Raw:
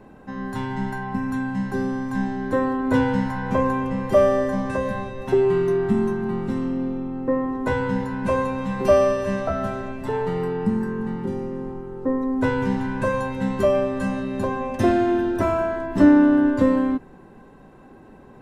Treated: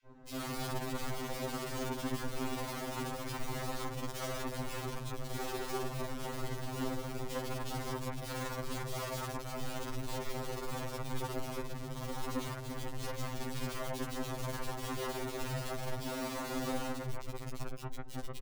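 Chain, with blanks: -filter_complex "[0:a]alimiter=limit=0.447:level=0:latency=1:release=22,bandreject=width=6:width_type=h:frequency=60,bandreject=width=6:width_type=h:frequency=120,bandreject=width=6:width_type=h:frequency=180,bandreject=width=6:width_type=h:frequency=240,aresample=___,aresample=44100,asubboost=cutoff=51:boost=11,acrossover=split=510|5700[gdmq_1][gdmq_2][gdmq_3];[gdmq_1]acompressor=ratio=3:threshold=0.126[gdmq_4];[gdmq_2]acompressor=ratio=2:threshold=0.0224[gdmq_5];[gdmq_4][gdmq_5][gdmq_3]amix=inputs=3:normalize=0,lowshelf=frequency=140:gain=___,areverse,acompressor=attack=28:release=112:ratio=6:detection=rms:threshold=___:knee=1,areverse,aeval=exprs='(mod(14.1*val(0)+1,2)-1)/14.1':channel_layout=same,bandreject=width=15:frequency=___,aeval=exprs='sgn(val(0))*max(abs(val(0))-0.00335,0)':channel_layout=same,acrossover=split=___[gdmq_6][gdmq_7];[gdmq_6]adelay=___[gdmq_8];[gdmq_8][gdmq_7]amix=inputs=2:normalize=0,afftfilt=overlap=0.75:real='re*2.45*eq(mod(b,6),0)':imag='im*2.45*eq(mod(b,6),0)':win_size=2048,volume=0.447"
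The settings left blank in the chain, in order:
16000, 11.5, 0.0631, 1600, 2400, 50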